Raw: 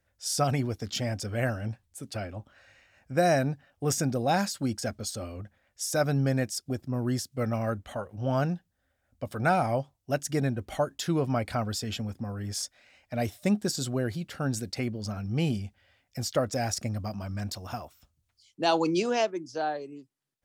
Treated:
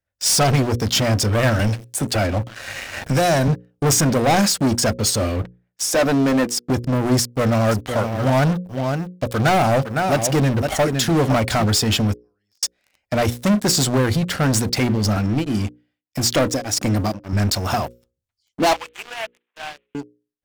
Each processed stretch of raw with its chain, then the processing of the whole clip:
0:01.59–0:03.48: single-tap delay 127 ms −22.5 dB + multiband upward and downward compressor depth 70%
0:05.42–0:06.70: high-pass filter 200 Hz 24 dB per octave + high-shelf EQ 3,400 Hz −9 dB
0:07.20–0:11.64: mu-law and A-law mismatch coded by A + single-tap delay 510 ms −12 dB
0:12.15–0:12.63: resonant band-pass 5,000 Hz, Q 2.6 + downward compressor 8 to 1, threshold −49 dBFS + spectral tilt −3 dB per octave
0:15.16–0:17.33: high-pass filter 110 Hz 6 dB per octave + parametric band 300 Hz +12.5 dB 0.24 octaves + tremolo along a rectified sine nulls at 1.7 Hz
0:18.73–0:19.95: variable-slope delta modulation 16 kbit/s + high-pass filter 500 Hz 24 dB per octave + first difference
whole clip: leveller curve on the samples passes 5; mains-hum notches 60/120/180/240/300/360/420/480/540 Hz

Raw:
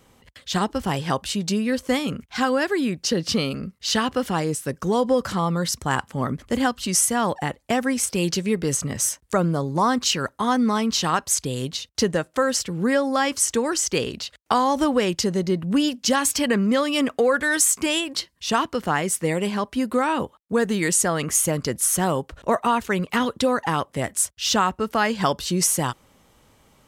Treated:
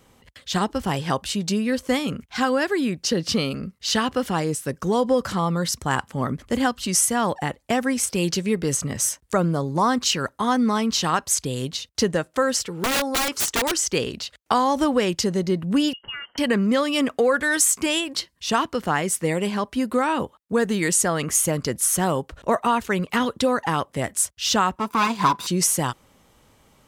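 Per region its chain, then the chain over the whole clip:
0:12.65–0:13.72: low-shelf EQ 490 Hz −7 dB + hollow resonant body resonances 420/910/1,300 Hz, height 9 dB, ringing for 25 ms + wrap-around overflow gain 16.5 dB
0:15.93–0:16.38: phaser with its sweep stopped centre 1,500 Hz, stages 4 + downward compressor 10 to 1, threshold −29 dBFS + voice inversion scrambler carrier 3,100 Hz
0:24.76–0:25.47: lower of the sound and its delayed copy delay 0.82 ms + high-pass filter 150 Hz + hollow resonant body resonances 1,000 Hz, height 17 dB, ringing for 50 ms
whole clip: no processing

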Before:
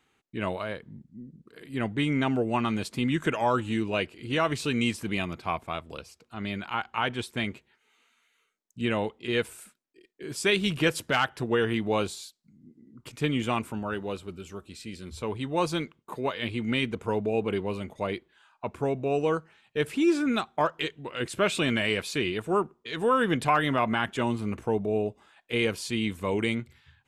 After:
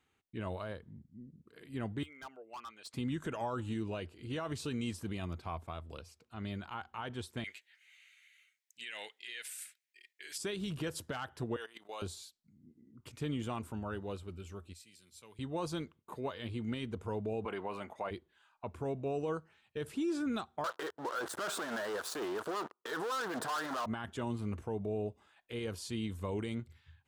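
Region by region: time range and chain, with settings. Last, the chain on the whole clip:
0:02.03–0:02.94: spectral envelope exaggerated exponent 1.5 + high-pass filter 1,200 Hz + hard clipping −33.5 dBFS
0:07.44–0:10.38: high-pass filter 900 Hz + high shelf with overshoot 1,500 Hz +9.5 dB, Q 3
0:11.56–0:12.02: high-pass filter 600 Hz + output level in coarse steps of 17 dB + spectral tilt +2 dB per octave
0:14.73–0:15.39: high-pass filter 110 Hz 24 dB per octave + first-order pre-emphasis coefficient 0.9
0:17.45–0:18.11: high-pass filter 230 Hz + flat-topped bell 1,300 Hz +10.5 dB 2.3 octaves
0:20.64–0:23.86: high shelf with overshoot 1,900 Hz −9 dB, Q 3 + leveller curve on the samples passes 5 + high-pass filter 480 Hz
whole clip: parametric band 84 Hz +11.5 dB 0.52 octaves; brickwall limiter −19.5 dBFS; dynamic equaliser 2,300 Hz, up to −8 dB, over −50 dBFS, Q 2; level −8 dB

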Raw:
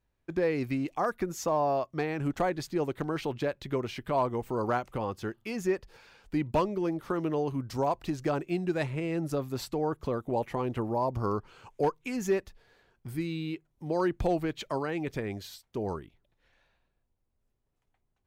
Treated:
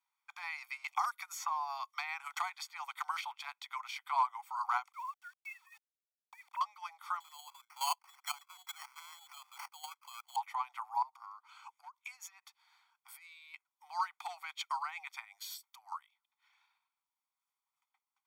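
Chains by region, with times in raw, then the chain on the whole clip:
0:00.84–0:03.26: high-pass filter 850 Hz 6 dB per octave + multiband upward and downward compressor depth 100%
0:04.92–0:06.61: three sine waves on the formant tracks + downward compressor 16 to 1, threshold −32 dBFS + centre clipping without the shift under −52.5 dBFS
0:07.20–0:10.36: high-pass filter 290 Hz 24 dB per octave + output level in coarse steps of 14 dB + sample-rate reduction 3,700 Hz
0:11.02–0:13.54: high-pass filter 180 Hz + downward compressor 16 to 1, threshold −39 dBFS
0:15.24–0:15.92: high-shelf EQ 8,600 Hz +9.5 dB + downward compressor 10 to 1, threshold −39 dBFS
whole clip: Butterworth high-pass 770 Hz 72 dB per octave; comb filter 0.9 ms, depth 88%; transient designer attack +1 dB, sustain −4 dB; level −3.5 dB

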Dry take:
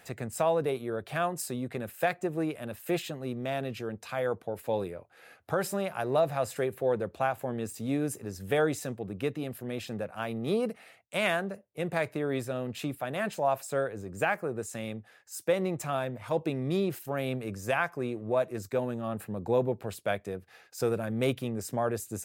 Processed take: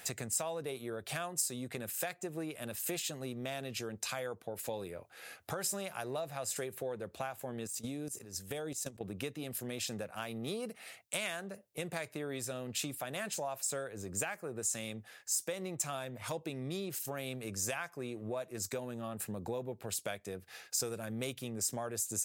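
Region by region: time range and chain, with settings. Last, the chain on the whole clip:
0:07.67–0:09.01: dynamic equaliser 1,600 Hz, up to −7 dB, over −44 dBFS, Q 0.8 + output level in coarse steps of 17 dB
whole clip: high-shelf EQ 2,700 Hz +10.5 dB; downward compressor 4 to 1, threshold −38 dBFS; dynamic equaliser 6,800 Hz, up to +8 dB, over −57 dBFS, Q 0.99

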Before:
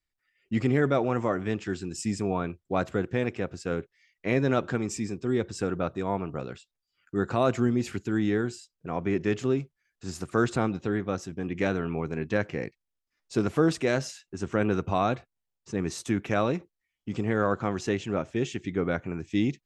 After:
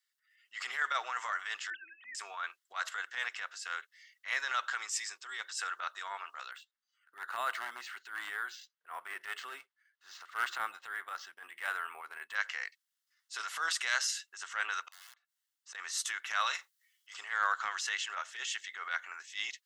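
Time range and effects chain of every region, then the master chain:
0:01.70–0:02.15: three sine waves on the formant tracks + one half of a high-frequency compander decoder only
0:06.51–0:12.35: RIAA equalisation playback + gain into a clipping stage and back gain 10.5 dB + linearly interpolated sample-rate reduction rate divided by 4×
0:14.85–0:15.75: high-pass filter 160 Hz 24 dB per octave + wrap-around overflow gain 21.5 dB + gate with flip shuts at −31 dBFS, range −31 dB
0:16.46–0:17.14: spectral tilt +2 dB per octave + double-tracking delay 39 ms −13 dB
whole clip: high-pass filter 1,300 Hz 24 dB per octave; notch filter 2,400 Hz, Q 5.5; transient designer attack −10 dB, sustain +2 dB; level +6.5 dB

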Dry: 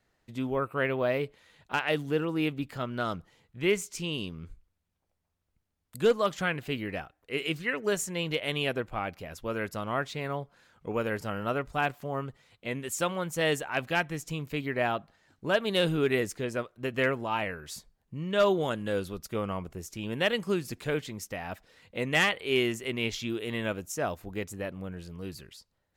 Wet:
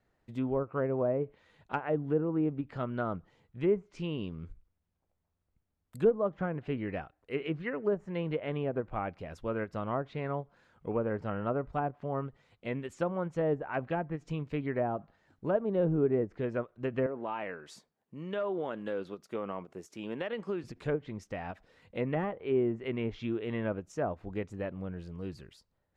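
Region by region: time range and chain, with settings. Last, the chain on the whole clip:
0:17.06–0:20.64: high-pass filter 250 Hz + downward compressor 4 to 1, threshold −29 dBFS
whole clip: treble cut that deepens with the level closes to 800 Hz, closed at −24.5 dBFS; high-shelf EQ 2,300 Hz −11.5 dB; every ending faded ahead of time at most 400 dB per second

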